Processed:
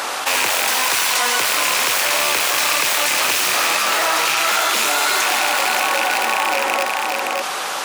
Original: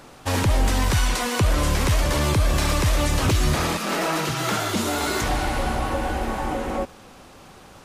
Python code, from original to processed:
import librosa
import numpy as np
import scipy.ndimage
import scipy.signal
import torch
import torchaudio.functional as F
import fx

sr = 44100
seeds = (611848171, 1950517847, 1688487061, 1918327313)

p1 = fx.rattle_buzz(x, sr, strikes_db=-28.0, level_db=-16.0)
p2 = (np.mod(10.0 ** (17.0 / 20.0) * p1 + 1.0, 2.0) - 1.0) / 10.0 ** (17.0 / 20.0)
p3 = p1 + (p2 * 10.0 ** (-4.5 / 20.0))
p4 = scipy.signal.sosfilt(scipy.signal.butter(2, 800.0, 'highpass', fs=sr, output='sos'), p3)
p5 = p4 + fx.echo_single(p4, sr, ms=569, db=-8.5, dry=0)
p6 = fx.env_flatten(p5, sr, amount_pct=70)
y = p6 * 10.0 ** (4.0 / 20.0)